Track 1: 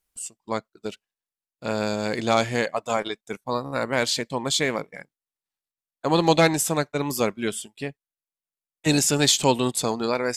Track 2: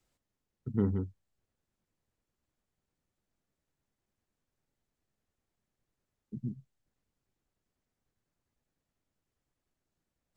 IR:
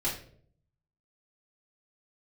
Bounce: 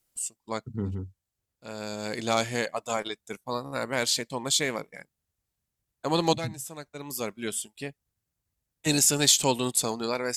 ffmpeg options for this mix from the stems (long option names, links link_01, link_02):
-filter_complex "[0:a]volume=-5dB[link_01];[1:a]highpass=48,asubboost=boost=3.5:cutoff=140,volume=-2.5dB,asplit=2[link_02][link_03];[link_03]apad=whole_len=457279[link_04];[link_01][link_04]sidechaincompress=threshold=-47dB:ratio=10:attack=21:release=907[link_05];[link_05][link_02]amix=inputs=2:normalize=0,aemphasis=mode=production:type=cd"